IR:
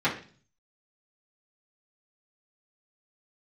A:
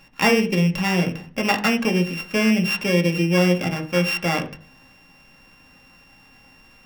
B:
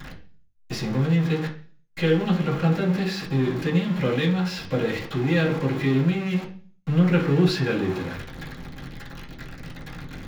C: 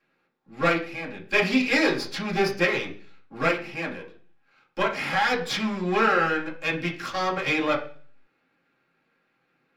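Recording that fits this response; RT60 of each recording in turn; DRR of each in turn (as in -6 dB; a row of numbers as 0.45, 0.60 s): B; 0.40, 0.40, 0.40 s; 3.0, -10.0, -5.5 dB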